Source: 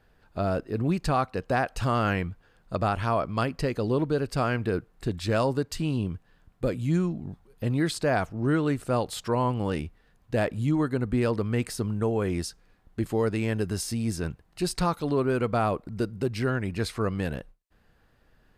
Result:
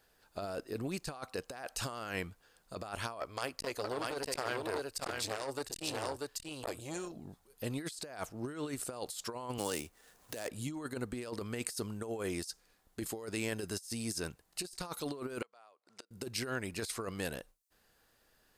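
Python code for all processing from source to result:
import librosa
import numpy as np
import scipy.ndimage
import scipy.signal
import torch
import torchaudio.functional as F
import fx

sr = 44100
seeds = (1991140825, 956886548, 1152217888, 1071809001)

y = fx.chain(x, sr, fx.peak_eq(hz=190.0, db=-13.0, octaves=0.76),
    fx.echo_single(ms=638, db=-3.5),
    fx.transformer_sat(knee_hz=1100.0), at=(3.2, 7.16))
y = fx.chain(y, sr, fx.median_filter(points=9),
    fx.bass_treble(bass_db=-5, treble_db=7),
    fx.band_squash(depth_pct=70), at=(9.58, 10.49))
y = fx.chain(y, sr, fx.bandpass_edges(low_hz=620.0, high_hz=6600.0),
    fx.gate_flip(shuts_db=-28.0, range_db=-28), at=(15.42, 16.11))
y = fx.bass_treble(y, sr, bass_db=-10, treble_db=14)
y = fx.over_compress(y, sr, threshold_db=-30.0, ratio=-0.5)
y = y * 10.0 ** (-7.5 / 20.0)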